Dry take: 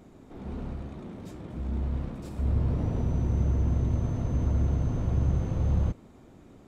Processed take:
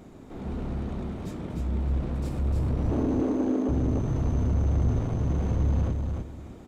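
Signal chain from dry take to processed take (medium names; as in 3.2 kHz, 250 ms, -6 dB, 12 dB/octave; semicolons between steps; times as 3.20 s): saturation -27 dBFS, distortion -10 dB; 2.91–3.69 s: frequency shift +190 Hz; on a send: feedback delay 301 ms, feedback 24%, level -4 dB; on the sum: trim +4.5 dB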